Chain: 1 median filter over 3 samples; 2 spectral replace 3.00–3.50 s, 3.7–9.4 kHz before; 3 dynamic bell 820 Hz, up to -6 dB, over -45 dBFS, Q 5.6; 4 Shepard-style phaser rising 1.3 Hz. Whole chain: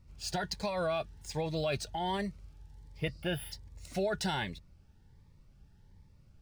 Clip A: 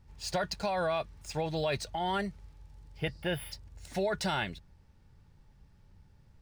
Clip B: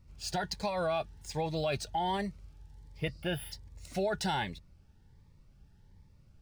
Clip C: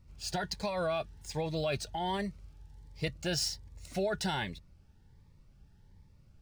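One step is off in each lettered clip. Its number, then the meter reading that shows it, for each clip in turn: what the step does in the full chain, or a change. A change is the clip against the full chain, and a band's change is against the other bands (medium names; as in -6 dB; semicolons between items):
4, 1 kHz band +2.5 dB; 3, 1 kHz band +3.0 dB; 2, 8 kHz band +4.0 dB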